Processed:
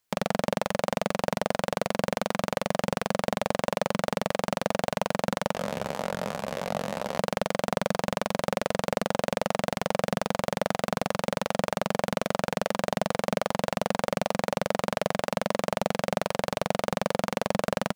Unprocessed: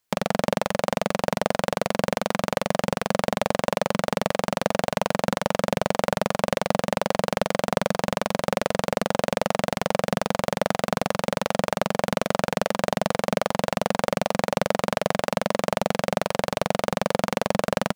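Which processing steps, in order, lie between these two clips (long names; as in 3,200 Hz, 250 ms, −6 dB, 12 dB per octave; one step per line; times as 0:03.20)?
brickwall limiter −7.5 dBFS, peak gain reduction 4.5 dB
0:05.53–0:07.18: micro pitch shift up and down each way 57 cents
level −1 dB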